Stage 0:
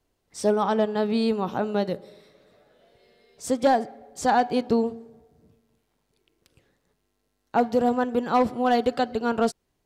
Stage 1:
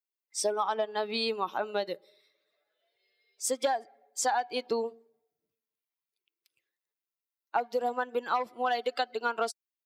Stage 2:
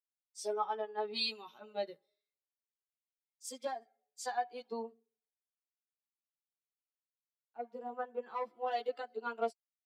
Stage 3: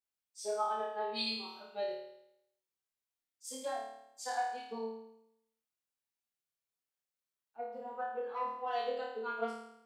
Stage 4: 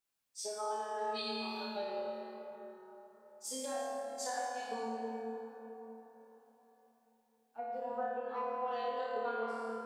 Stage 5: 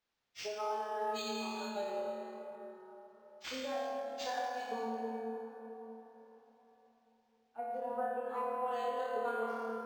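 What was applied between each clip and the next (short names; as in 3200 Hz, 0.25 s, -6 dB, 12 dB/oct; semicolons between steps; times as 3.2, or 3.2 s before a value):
per-bin expansion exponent 1.5; HPF 700 Hz 12 dB/oct; compressor 10:1, threshold -32 dBFS, peak gain reduction 13 dB; gain +7 dB
chorus voices 2, 0.29 Hz, delay 13 ms, depth 1.2 ms; harmonic-percussive split percussive -12 dB; three-band expander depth 100%; gain -5 dB
flutter echo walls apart 4.6 m, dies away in 0.78 s; gain -2.5 dB
compressor, threshold -44 dBFS, peak gain reduction 14 dB; plate-style reverb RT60 4.3 s, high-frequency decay 0.4×, DRR -1.5 dB; gain +4.5 dB
decimation joined by straight lines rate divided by 4×; gain +1 dB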